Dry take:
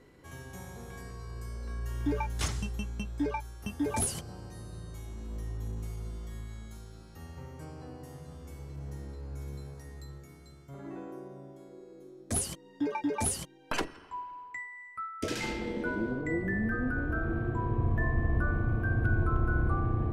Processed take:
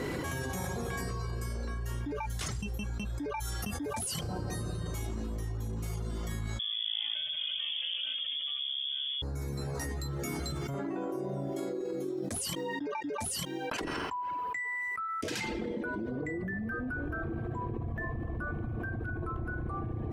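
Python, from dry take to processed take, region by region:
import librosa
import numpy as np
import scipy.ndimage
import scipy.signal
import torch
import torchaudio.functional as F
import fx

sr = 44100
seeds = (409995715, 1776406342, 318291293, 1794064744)

y = fx.chain(x, sr, fx.tilt_eq(slope=-1.5),
    fx.freq_invert(carrier_hz=3400), at=(6.59, 9.22))
y = fx.highpass(y, sr, hz=76.0, slope=6)
y = fx.dereverb_blind(y, sr, rt60_s=0.91)
y = fx.env_flatten(y, sr, amount_pct=100)
y = F.gain(torch.from_numpy(y), -8.5).numpy()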